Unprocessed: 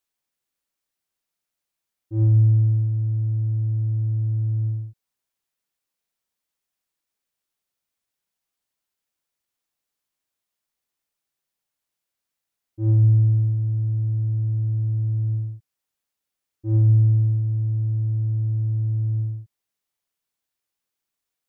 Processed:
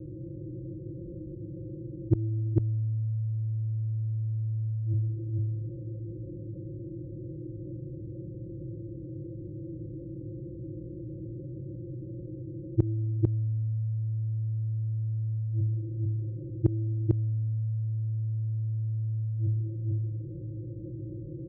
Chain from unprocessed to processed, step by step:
compressor on every frequency bin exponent 0.6
Butterworth low-pass 530 Hz 96 dB per octave
low-shelf EQ 120 Hz +7.5 dB
comb filter 5.9 ms, depth 91%
coupled-rooms reverb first 0.93 s, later 3.5 s, from −25 dB, DRR 15 dB
gate with flip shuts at −16 dBFS, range −34 dB
high-pass filter 44 Hz
single-tap delay 447 ms −3 dB
envelope flattener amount 50%
level +6.5 dB

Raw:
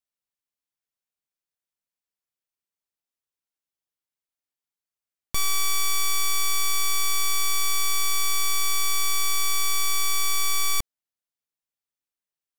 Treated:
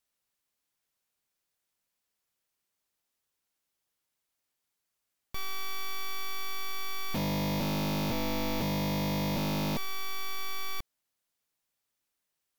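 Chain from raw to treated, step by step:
0:07.12–0:09.77: sub-harmonics by changed cycles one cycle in 3, inverted
sine wavefolder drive 11 dB, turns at −20 dBFS
level −6.5 dB

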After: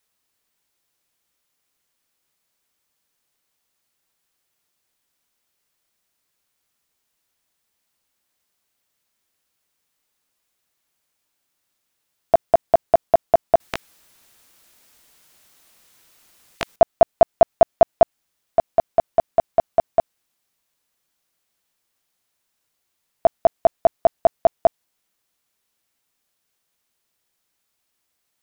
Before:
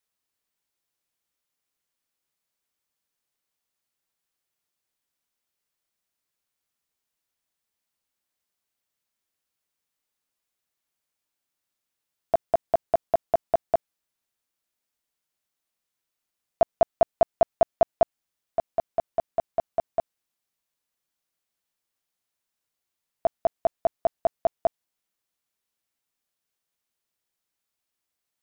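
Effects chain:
in parallel at −3 dB: brickwall limiter −17.5 dBFS, peak gain reduction 7.5 dB
0:13.60–0:16.76: on the sum: every bin compressed towards the loudest bin 10 to 1
level +4.5 dB

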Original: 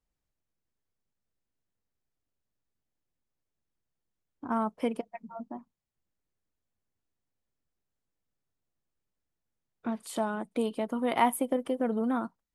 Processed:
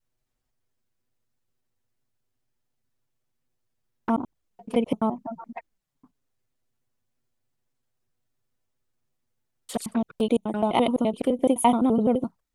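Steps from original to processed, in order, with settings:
slices reordered back to front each 85 ms, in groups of 6
flanger swept by the level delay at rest 8.1 ms, full sweep at −29.5 dBFS
level +8.5 dB

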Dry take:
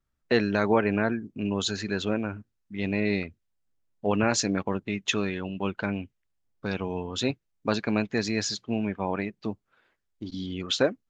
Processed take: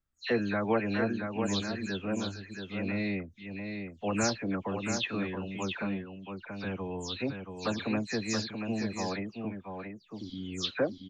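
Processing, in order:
every frequency bin delayed by itself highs early, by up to 172 ms
on a send: single-tap delay 679 ms −6 dB
on the sum: level −5 dB

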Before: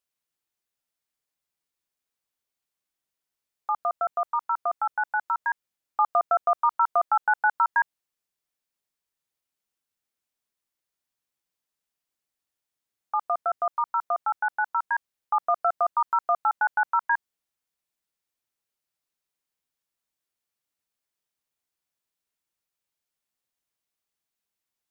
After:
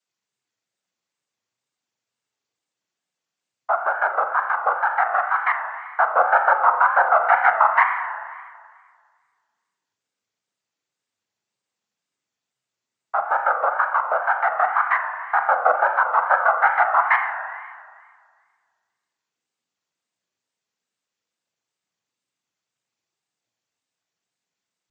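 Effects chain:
cochlear-implant simulation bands 16
spring reverb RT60 1.8 s, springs 33/41 ms, chirp 80 ms, DRR 4 dB
tape wow and flutter 120 cents
level +5.5 dB

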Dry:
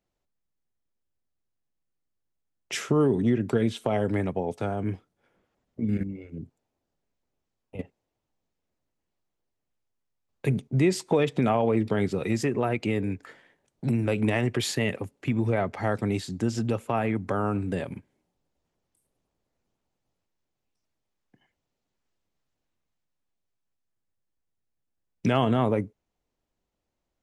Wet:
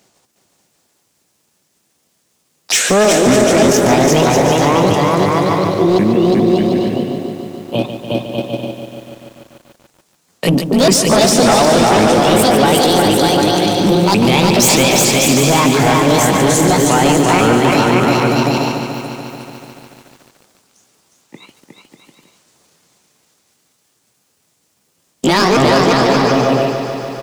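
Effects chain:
pitch shifter swept by a sawtooth +11 semitones, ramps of 544 ms
high-pass filter 140 Hz
parametric band 6,800 Hz +9 dB 1.6 octaves
bouncing-ball delay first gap 360 ms, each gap 0.65×, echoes 5
soft clipping −23 dBFS, distortion −11 dB
boost into a limiter +32.5 dB
feedback echo at a low word length 145 ms, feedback 80%, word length 6 bits, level −9.5 dB
level −6 dB

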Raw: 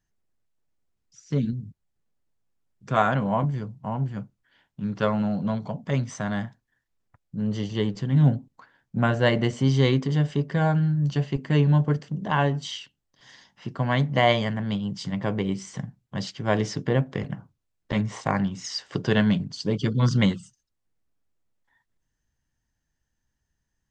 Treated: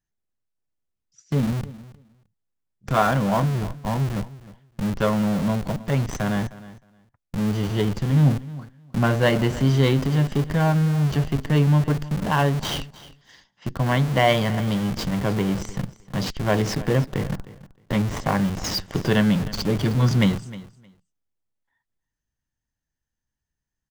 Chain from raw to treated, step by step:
noise gate −51 dBFS, range −7 dB
in parallel at −3.5 dB: comparator with hysteresis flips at −33 dBFS
on the sum: repeating echo 310 ms, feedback 16%, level −18 dB

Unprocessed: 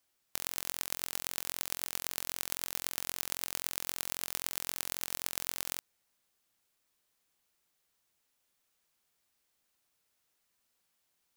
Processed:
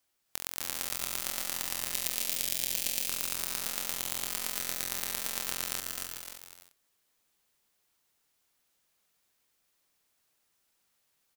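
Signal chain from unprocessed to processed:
delay that plays each chunk backwards 306 ms, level −6 dB
0:01.94–0:03.08: drawn EQ curve 580 Hz 0 dB, 1,300 Hz −13 dB, 2,400 Hz +3 dB
bouncing-ball delay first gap 260 ms, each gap 0.6×, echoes 5

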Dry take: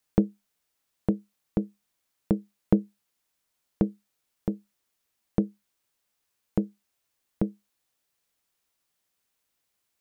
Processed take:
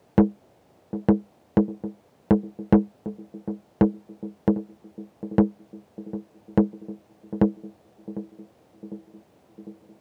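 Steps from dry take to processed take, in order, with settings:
mid-hump overdrive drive 28 dB, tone 1,100 Hz, clips at −4.5 dBFS
feedback echo with a band-pass in the loop 751 ms, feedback 69%, band-pass 300 Hz, level −13.5 dB
noise in a band 72–760 Hz −59 dBFS

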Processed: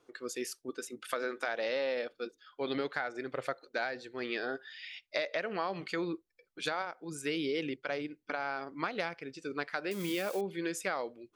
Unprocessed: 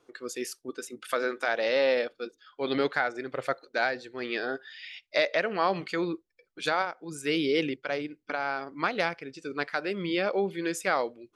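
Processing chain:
0:09.91–0:10.41: spike at every zero crossing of −27 dBFS
downward compressor 4 to 1, threshold −28 dBFS, peak gain reduction 8 dB
level −2.5 dB

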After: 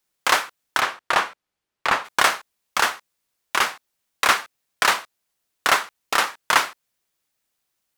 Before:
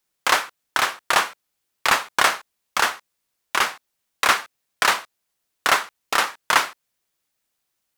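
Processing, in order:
0:00.79–0:02.04: low-pass filter 3,500 Hz → 2,000 Hz 6 dB per octave

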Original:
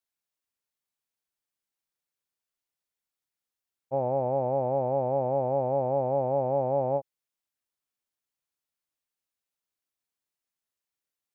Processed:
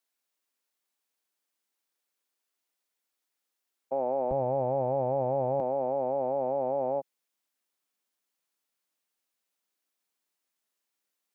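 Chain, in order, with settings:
high-pass filter 220 Hz 24 dB per octave, from 0:04.31 45 Hz, from 0:05.60 180 Hz
brickwall limiter −26 dBFS, peak gain reduction 9.5 dB
level +5.5 dB

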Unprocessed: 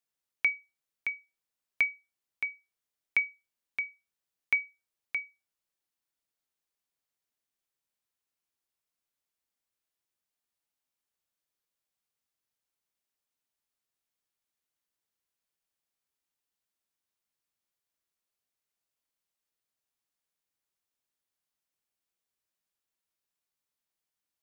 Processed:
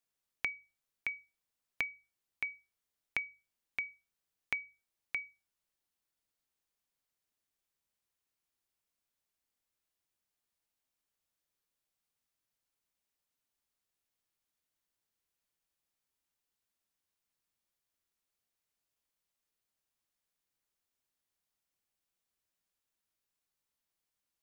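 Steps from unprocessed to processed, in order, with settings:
low-shelf EQ 130 Hz +6.5 dB
mains-hum notches 50/100/150 Hz
downward compressor, threshold −33 dBFS, peak gain reduction 11 dB

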